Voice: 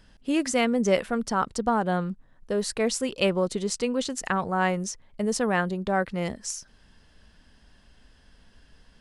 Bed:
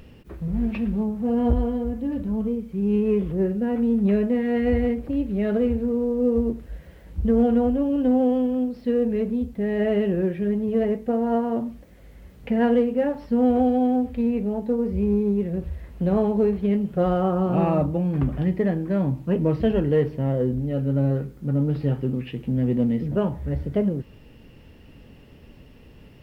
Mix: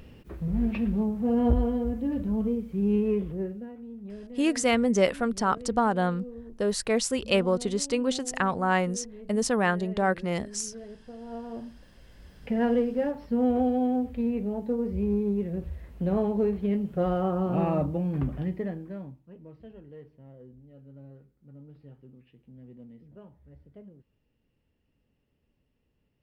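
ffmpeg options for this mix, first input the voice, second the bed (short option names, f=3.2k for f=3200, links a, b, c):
-filter_complex "[0:a]adelay=4100,volume=0dB[a];[1:a]volume=14dB,afade=t=out:st=2.84:d=0.91:silence=0.112202,afade=t=in:st=11.16:d=1.36:silence=0.158489,afade=t=out:st=18.14:d=1.07:silence=0.0841395[b];[a][b]amix=inputs=2:normalize=0"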